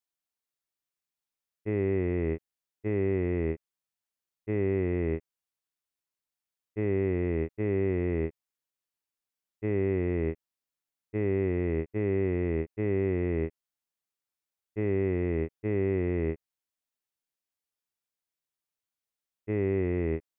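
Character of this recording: noise floor -91 dBFS; spectral tilt -7.5 dB/oct

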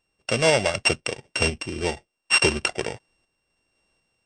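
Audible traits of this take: a buzz of ramps at a fixed pitch in blocks of 16 samples; random-step tremolo 4 Hz; MP3

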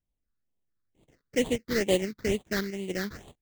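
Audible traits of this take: aliases and images of a low sample rate 2500 Hz, jitter 20%; tremolo saw up 0.74 Hz, depth 40%; phasing stages 6, 2.2 Hz, lowest notch 710–1500 Hz

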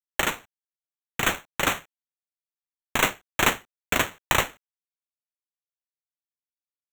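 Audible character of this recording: aliases and images of a low sample rate 4900 Hz, jitter 0%; tremolo triangle 2.4 Hz, depth 50%; a quantiser's noise floor 12-bit, dither none

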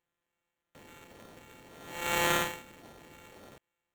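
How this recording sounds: a buzz of ramps at a fixed pitch in blocks of 32 samples; phasing stages 2, 1.8 Hz, lowest notch 800–2200 Hz; aliases and images of a low sample rate 5000 Hz, jitter 0%

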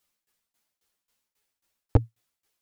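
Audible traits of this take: tremolo saw down 3.7 Hz, depth 95%; a shimmering, thickened sound

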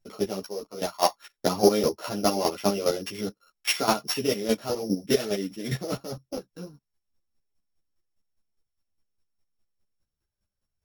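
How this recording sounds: a buzz of ramps at a fixed pitch in blocks of 8 samples; chopped level 4.9 Hz, depth 65%, duty 20%; a shimmering, thickened sound

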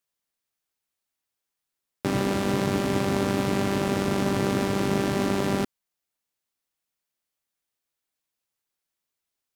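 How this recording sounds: noise floor -85 dBFS; spectral tilt -5.5 dB/oct

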